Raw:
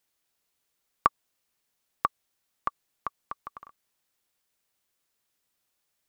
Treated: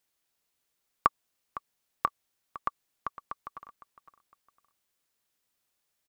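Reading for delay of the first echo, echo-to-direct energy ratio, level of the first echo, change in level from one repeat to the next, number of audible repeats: 508 ms, -15.0 dB, -15.5 dB, -8.5 dB, 2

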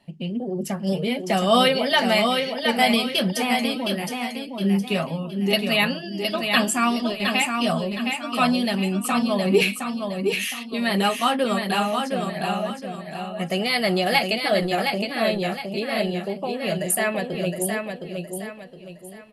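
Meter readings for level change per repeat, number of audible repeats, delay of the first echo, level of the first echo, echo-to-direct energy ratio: -9.0 dB, 3, 715 ms, -5.0 dB, -4.5 dB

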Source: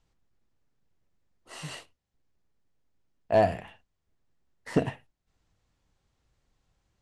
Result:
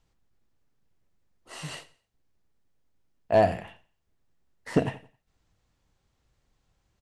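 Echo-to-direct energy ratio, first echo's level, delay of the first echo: -18.5 dB, -19.0 dB, 88 ms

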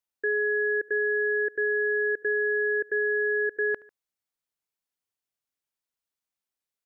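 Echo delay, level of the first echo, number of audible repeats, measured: 73 ms, -23.0 dB, 2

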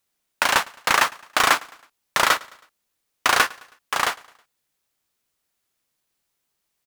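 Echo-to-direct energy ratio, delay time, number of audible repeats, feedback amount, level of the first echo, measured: -22.5 dB, 107 ms, 2, 48%, -23.5 dB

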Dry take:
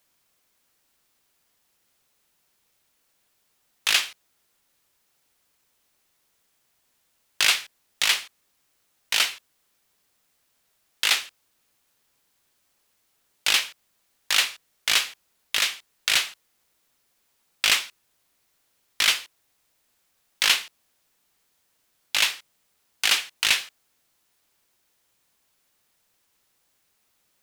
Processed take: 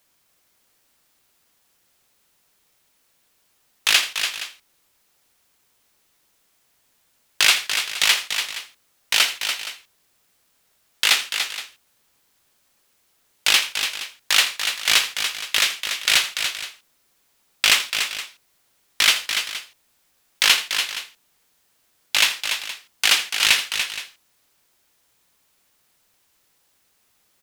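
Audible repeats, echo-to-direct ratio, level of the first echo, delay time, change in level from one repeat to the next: 3, -6.0 dB, -15.5 dB, 82 ms, no regular repeats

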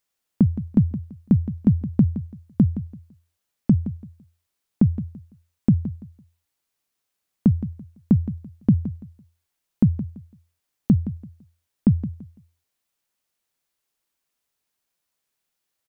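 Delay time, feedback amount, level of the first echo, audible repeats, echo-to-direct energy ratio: 168 ms, 25%, -13.0 dB, 2, -12.5 dB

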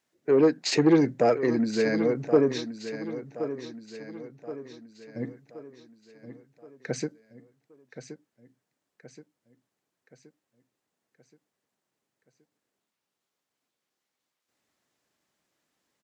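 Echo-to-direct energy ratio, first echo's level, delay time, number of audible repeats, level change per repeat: -10.5 dB, -11.5 dB, 1074 ms, 4, -6.5 dB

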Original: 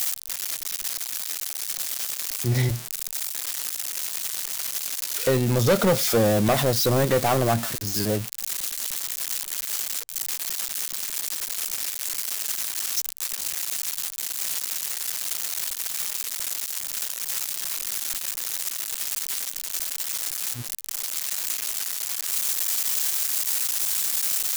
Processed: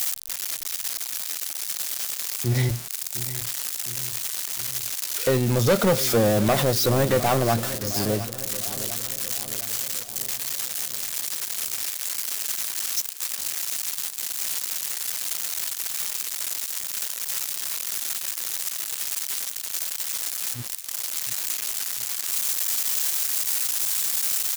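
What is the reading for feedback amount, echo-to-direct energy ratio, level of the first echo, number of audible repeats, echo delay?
56%, -13.0 dB, -14.5 dB, 5, 708 ms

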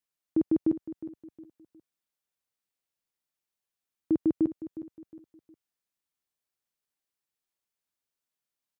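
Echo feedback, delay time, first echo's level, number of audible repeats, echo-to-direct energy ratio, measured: 35%, 361 ms, -14.0 dB, 3, -13.5 dB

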